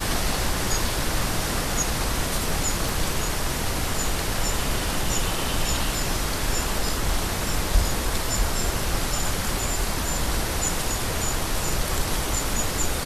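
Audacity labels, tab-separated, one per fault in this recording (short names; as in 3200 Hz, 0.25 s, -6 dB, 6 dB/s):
2.890000	2.890000	pop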